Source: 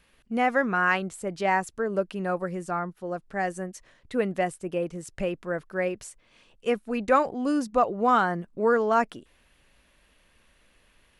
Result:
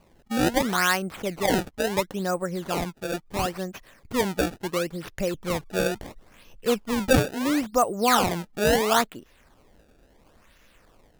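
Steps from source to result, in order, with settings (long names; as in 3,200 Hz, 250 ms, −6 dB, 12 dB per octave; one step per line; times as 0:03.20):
0:05.34–0:07.20: low-shelf EQ 150 Hz +9 dB
in parallel at −2 dB: downward compressor, threshold −38 dBFS, peak gain reduction 21 dB
on the sum: sample-and-hold swept by an LFO 24×, swing 160% 0.73 Hz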